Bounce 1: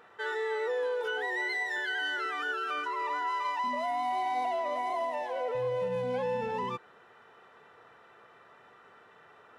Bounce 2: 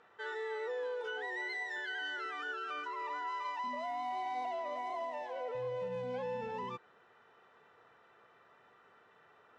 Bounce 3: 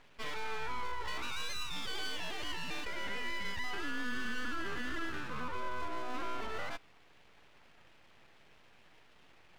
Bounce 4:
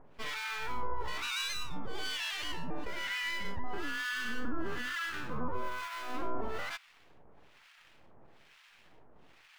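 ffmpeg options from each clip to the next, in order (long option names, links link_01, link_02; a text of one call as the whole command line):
ffmpeg -i in.wav -af "lowpass=frequency=7800:width=0.5412,lowpass=frequency=7800:width=1.3066,volume=-7dB" out.wav
ffmpeg -i in.wav -af "aeval=exprs='abs(val(0))':channel_layout=same,volume=4dB" out.wav
ffmpeg -i in.wav -filter_complex "[0:a]acrusher=bits=8:mode=log:mix=0:aa=0.000001,acrossover=split=1100[link_01][link_02];[link_01]aeval=exprs='val(0)*(1-1/2+1/2*cos(2*PI*1.1*n/s))':channel_layout=same[link_03];[link_02]aeval=exprs='val(0)*(1-1/2-1/2*cos(2*PI*1.1*n/s))':channel_layout=same[link_04];[link_03][link_04]amix=inputs=2:normalize=0,volume=7dB" out.wav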